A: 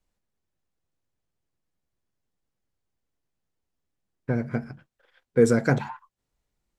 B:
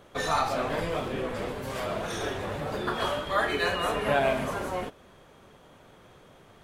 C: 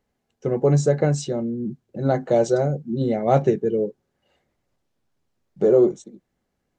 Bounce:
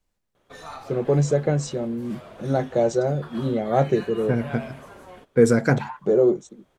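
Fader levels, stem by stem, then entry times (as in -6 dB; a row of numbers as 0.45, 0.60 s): +2.5, -12.5, -2.0 dB; 0.00, 0.35, 0.45 s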